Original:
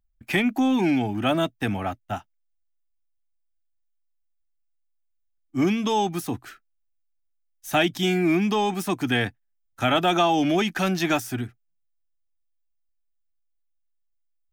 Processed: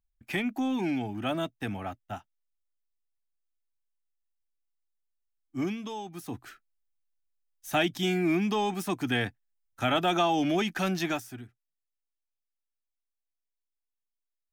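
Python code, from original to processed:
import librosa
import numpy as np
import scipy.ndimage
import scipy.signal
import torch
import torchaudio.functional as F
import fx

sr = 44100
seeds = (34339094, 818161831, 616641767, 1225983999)

y = fx.gain(x, sr, db=fx.line((5.58, -8.0), (6.04, -16.5), (6.43, -5.0), (11.0, -5.0), (11.4, -14.5)))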